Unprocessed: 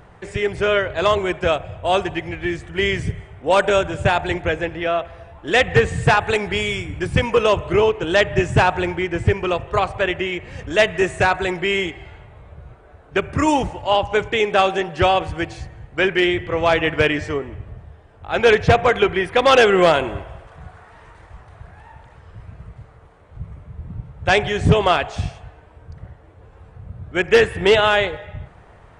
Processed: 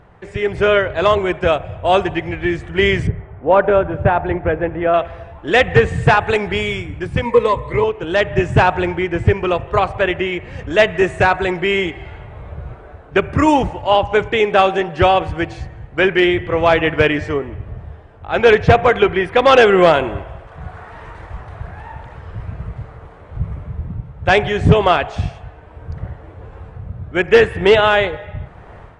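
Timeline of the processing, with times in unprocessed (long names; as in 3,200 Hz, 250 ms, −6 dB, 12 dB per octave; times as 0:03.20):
0:03.07–0:04.94: low-pass filter 1,500 Hz
0:07.25–0:07.84: EQ curve with evenly spaced ripples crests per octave 0.99, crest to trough 15 dB
whole clip: high-shelf EQ 5,000 Hz −12 dB; automatic gain control; level −1 dB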